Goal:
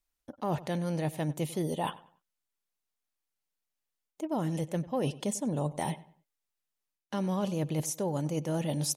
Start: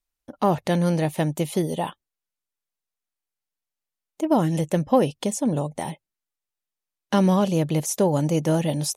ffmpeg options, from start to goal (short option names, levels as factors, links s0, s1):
-filter_complex "[0:a]areverse,acompressor=threshold=0.0398:ratio=10,areverse,asplit=2[s0][s1];[s1]adelay=96,lowpass=f=3300:p=1,volume=0.126,asplit=2[s2][s3];[s3]adelay=96,lowpass=f=3300:p=1,volume=0.33,asplit=2[s4][s5];[s5]adelay=96,lowpass=f=3300:p=1,volume=0.33[s6];[s0][s2][s4][s6]amix=inputs=4:normalize=0"